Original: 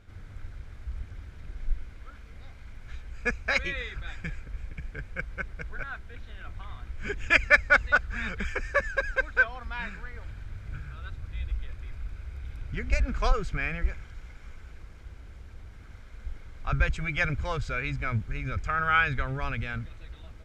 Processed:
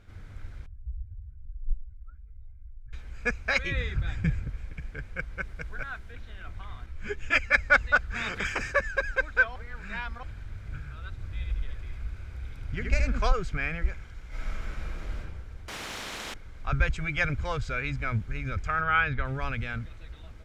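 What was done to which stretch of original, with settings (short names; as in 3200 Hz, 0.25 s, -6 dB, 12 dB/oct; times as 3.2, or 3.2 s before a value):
0.66–2.93 spectral contrast raised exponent 2.2
3.71–4.5 bell 110 Hz +14 dB 2.7 oct
5.41–6.12 high shelf 5600 Hz +4.5 dB
6.86–7.55 ensemble effect
8.14–8.71 spectral limiter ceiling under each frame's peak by 17 dB
9.56–10.23 reverse
11.11–13.24 echo 76 ms -4 dB
14.28–15.18 reverb throw, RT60 1.2 s, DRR -11.5 dB
15.68–16.34 spectral compressor 10:1
18.81–19.25 air absorption 160 m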